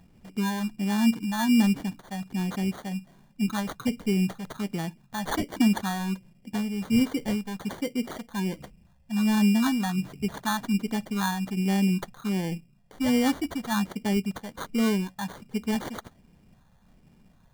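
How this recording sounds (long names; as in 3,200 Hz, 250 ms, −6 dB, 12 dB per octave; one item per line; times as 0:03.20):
phaser sweep stages 4, 1.3 Hz, lowest notch 320–2,400 Hz
aliases and images of a low sample rate 2,600 Hz, jitter 0%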